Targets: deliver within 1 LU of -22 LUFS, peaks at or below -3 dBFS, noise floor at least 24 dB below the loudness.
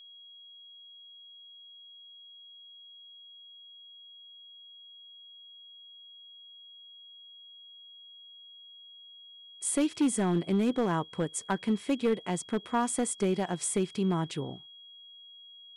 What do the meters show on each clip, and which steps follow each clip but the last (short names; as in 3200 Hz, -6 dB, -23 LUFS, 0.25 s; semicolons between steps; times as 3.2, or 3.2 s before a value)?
clipped 0.5%; flat tops at -20.5 dBFS; steady tone 3300 Hz; tone level -49 dBFS; loudness -30.0 LUFS; peak -20.5 dBFS; loudness target -22.0 LUFS
-> clip repair -20.5 dBFS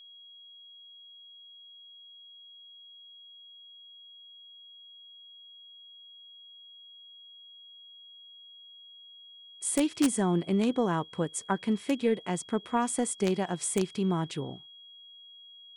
clipped 0.0%; steady tone 3300 Hz; tone level -49 dBFS
-> notch 3300 Hz, Q 30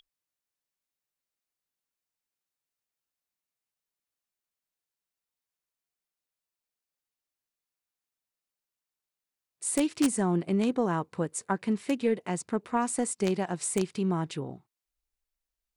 steady tone none; loudness -29.5 LUFS; peak -11.5 dBFS; loudness target -22.0 LUFS
-> gain +7.5 dB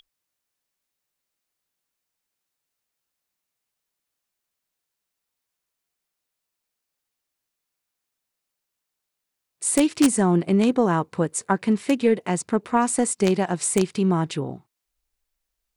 loudness -22.0 LUFS; peak -4.0 dBFS; noise floor -83 dBFS